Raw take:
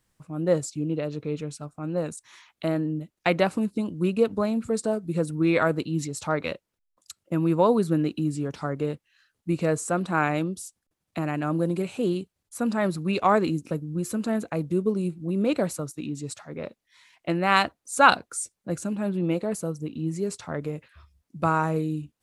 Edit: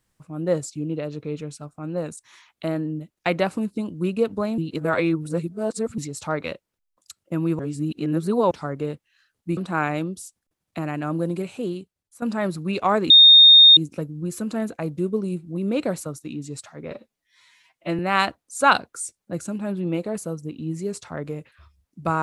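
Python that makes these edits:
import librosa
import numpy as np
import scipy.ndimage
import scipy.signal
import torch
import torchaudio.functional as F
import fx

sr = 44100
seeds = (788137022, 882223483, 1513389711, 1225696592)

y = fx.edit(x, sr, fx.reverse_span(start_s=4.58, length_s=1.4),
    fx.reverse_span(start_s=7.59, length_s=0.92),
    fx.cut(start_s=9.57, length_s=0.4),
    fx.fade_out_to(start_s=11.74, length_s=0.88, floor_db=-12.0),
    fx.insert_tone(at_s=13.5, length_s=0.67, hz=3680.0, db=-6.5),
    fx.stretch_span(start_s=16.64, length_s=0.72, factor=1.5), tone=tone)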